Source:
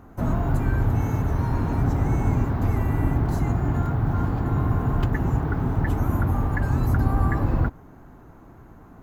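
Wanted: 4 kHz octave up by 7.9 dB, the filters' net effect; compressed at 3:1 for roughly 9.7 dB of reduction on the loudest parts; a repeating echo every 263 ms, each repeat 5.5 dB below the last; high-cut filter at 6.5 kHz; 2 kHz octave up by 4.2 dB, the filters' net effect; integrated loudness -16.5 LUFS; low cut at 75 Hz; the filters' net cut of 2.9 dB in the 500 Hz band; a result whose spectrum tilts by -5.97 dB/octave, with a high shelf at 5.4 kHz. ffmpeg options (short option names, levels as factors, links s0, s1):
-af "highpass=75,lowpass=6500,equalizer=f=500:t=o:g=-4.5,equalizer=f=2000:t=o:g=4,equalizer=f=4000:t=o:g=8,highshelf=f=5400:g=3.5,acompressor=threshold=0.0251:ratio=3,aecho=1:1:263|526|789|1052|1315|1578|1841:0.531|0.281|0.149|0.079|0.0419|0.0222|0.0118,volume=6.31"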